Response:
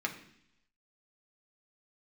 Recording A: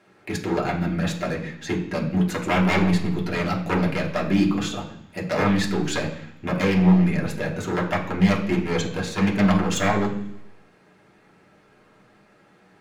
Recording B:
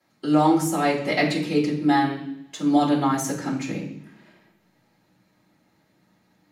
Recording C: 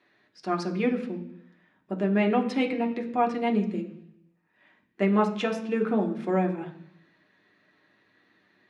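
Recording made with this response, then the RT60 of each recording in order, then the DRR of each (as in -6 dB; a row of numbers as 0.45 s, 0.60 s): C; 0.70 s, 0.70 s, 0.70 s; -4.0 dB, -12.0 dB, 1.0 dB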